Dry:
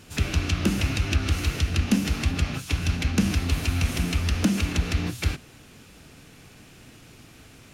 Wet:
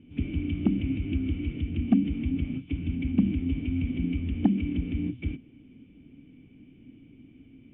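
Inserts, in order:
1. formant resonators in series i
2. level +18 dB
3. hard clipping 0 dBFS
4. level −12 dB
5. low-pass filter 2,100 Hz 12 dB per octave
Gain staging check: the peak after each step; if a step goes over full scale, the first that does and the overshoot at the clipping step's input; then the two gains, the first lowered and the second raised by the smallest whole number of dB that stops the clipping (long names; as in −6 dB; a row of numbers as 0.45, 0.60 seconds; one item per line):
−13.5, +4.5, 0.0, −12.0, −12.0 dBFS
step 2, 4.5 dB
step 2 +13 dB, step 4 −7 dB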